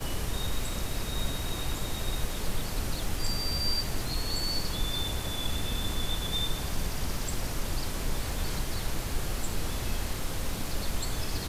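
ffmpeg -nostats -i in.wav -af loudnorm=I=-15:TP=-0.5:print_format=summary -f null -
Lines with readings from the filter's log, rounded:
Input Integrated:    -33.1 LUFS
Input True Peak:     -15.9 dBTP
Input LRA:             2.7 LU
Input Threshold:     -43.1 LUFS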